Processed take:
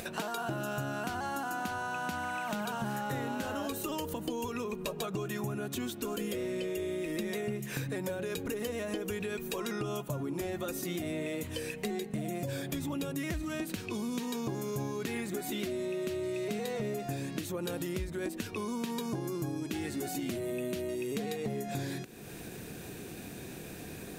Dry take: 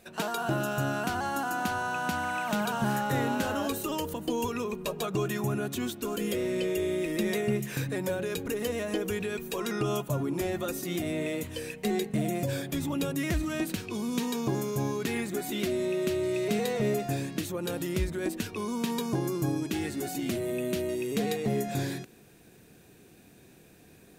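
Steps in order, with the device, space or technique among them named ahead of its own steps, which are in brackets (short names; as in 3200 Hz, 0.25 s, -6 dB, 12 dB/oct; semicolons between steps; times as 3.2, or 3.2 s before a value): upward and downward compression (upward compressor, threshold -32 dBFS; compressor, threshold -32 dBFS, peak gain reduction 8.5 dB)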